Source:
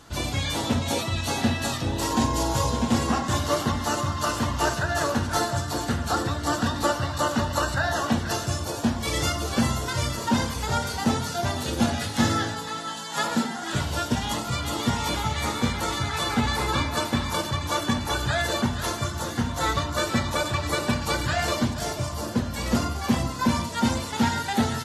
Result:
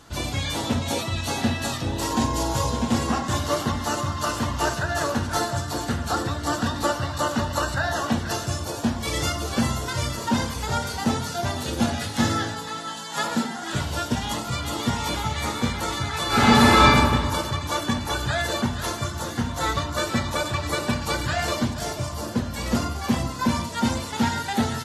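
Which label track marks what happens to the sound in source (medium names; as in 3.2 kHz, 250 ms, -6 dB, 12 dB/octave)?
16.270000	16.870000	reverb throw, RT60 1.7 s, DRR -10.5 dB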